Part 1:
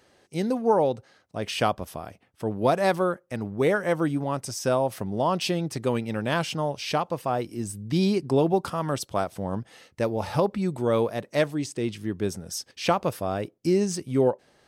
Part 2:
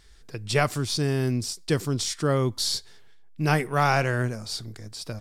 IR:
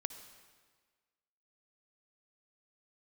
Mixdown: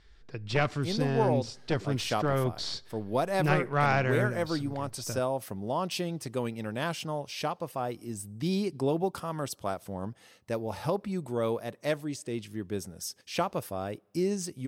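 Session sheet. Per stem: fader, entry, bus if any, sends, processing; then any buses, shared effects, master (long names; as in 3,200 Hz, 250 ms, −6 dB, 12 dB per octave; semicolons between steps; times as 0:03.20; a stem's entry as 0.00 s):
−7.0 dB, 0.50 s, send −23.5 dB, high-shelf EQ 11,000 Hz +9 dB
−4.0 dB, 0.00 s, send −19.5 dB, wavefolder on the positive side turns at −21.5 dBFS; low-pass filter 3,800 Hz 12 dB per octave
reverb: on, RT60 1.5 s, pre-delay 52 ms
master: no processing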